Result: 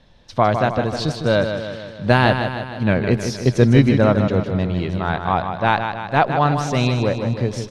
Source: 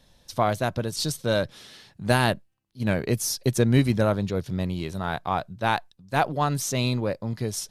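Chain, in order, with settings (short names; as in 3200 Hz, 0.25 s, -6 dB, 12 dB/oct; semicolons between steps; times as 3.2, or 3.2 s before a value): LPF 3400 Hz 12 dB/oct; feedback echo 0.155 s, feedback 57%, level -7.5 dB; gain +6.5 dB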